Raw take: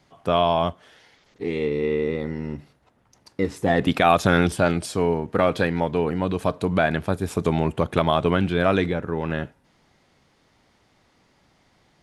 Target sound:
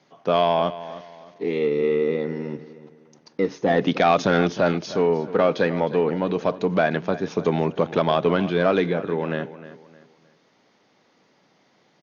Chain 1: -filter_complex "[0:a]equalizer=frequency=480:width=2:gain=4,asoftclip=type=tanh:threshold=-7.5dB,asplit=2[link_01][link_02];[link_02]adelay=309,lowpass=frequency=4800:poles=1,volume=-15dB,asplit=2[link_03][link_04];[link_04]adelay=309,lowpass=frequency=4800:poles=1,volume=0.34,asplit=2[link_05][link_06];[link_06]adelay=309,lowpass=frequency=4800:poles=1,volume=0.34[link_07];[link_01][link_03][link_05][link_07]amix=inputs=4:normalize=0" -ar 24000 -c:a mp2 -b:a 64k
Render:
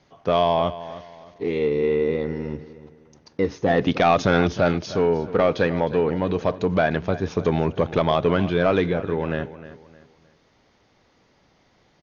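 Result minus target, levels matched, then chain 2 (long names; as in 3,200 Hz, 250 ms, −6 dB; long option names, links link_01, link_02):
125 Hz band +2.5 dB
-filter_complex "[0:a]highpass=frequency=150:width=0.5412,highpass=frequency=150:width=1.3066,equalizer=frequency=480:width=2:gain=4,asoftclip=type=tanh:threshold=-7.5dB,asplit=2[link_01][link_02];[link_02]adelay=309,lowpass=frequency=4800:poles=1,volume=-15dB,asplit=2[link_03][link_04];[link_04]adelay=309,lowpass=frequency=4800:poles=1,volume=0.34,asplit=2[link_05][link_06];[link_06]adelay=309,lowpass=frequency=4800:poles=1,volume=0.34[link_07];[link_01][link_03][link_05][link_07]amix=inputs=4:normalize=0" -ar 24000 -c:a mp2 -b:a 64k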